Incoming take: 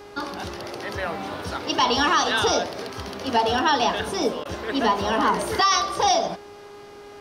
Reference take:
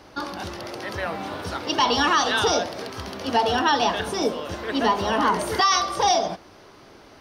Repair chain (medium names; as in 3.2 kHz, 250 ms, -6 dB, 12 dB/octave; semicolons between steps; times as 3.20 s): de-hum 409.4 Hz, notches 32; interpolate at 4.44 s, 12 ms